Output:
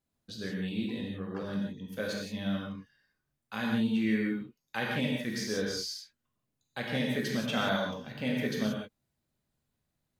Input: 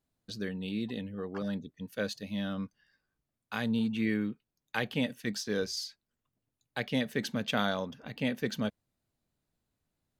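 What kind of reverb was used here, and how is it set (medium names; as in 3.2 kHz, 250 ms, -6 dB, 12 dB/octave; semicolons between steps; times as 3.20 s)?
gated-style reverb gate 200 ms flat, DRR -3 dB; trim -3.5 dB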